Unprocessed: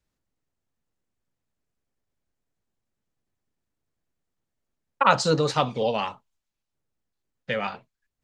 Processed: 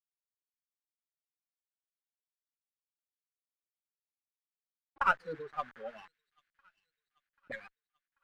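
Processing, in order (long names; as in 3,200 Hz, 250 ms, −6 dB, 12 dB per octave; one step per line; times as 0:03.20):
spectral dynamics exaggerated over time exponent 3
tilt shelving filter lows +4.5 dB
echo ahead of the sound 51 ms −20 dB
in parallel at +1.5 dB: speech leveller 2 s
on the sum: notch filter 1,800 Hz, Q 24
bit reduction 6 bits
envelope filter 220–1,600 Hz, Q 4.2, up, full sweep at −25.5 dBFS
dead-zone distortion −58 dBFS
high-frequency loss of the air 360 metres
on a send: delay with a high-pass on its return 788 ms, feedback 55%, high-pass 4,000 Hz, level −14.5 dB
on the sum: windowed peak hold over 3 samples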